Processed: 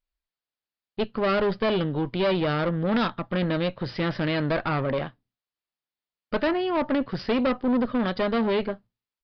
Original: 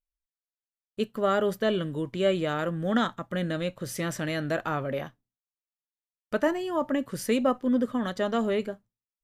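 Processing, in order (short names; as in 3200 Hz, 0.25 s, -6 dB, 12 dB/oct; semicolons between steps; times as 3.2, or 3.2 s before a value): tube stage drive 28 dB, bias 0.6; downsampling 11025 Hz; gain +8.5 dB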